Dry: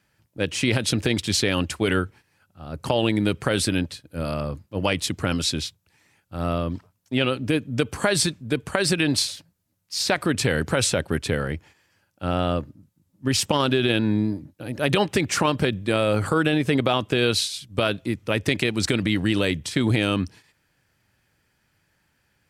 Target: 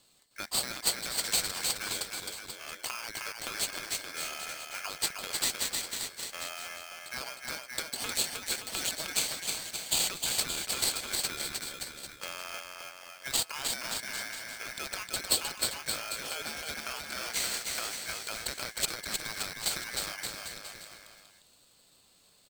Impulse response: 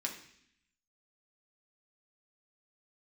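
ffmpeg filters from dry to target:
-af "highpass=f=790:p=1,acompressor=threshold=-38dB:ratio=6,lowpass=f=6.3k:t=q:w=13,aecho=1:1:310|573.5|797.5|987.9|1150:0.631|0.398|0.251|0.158|0.1,aeval=exprs='val(0)*sgn(sin(2*PI*1900*n/s))':c=same"

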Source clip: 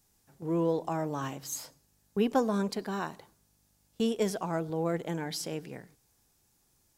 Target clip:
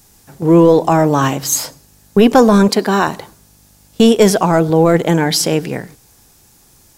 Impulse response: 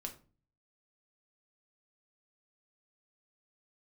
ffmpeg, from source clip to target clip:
-filter_complex "[0:a]asettb=1/sr,asplit=3[a][b][c];[a]atrim=end=2.684[d];[b]atrim=start=2.68:end=3.08,asetpts=PTS-STARTPTS,afade=t=in:d=0.004:c=qsin,afade=t=out:st=0.396:d=0.004:c=qsin,highpass=180[e];[c]atrim=start=3.076[f];[d][e]acrossfade=d=0.004:c1=hsin:c2=qsin[g];[g][f]acrossfade=d=0.004:c1=qsin:c2=hsin,apsyclip=23dB,volume=-2dB"

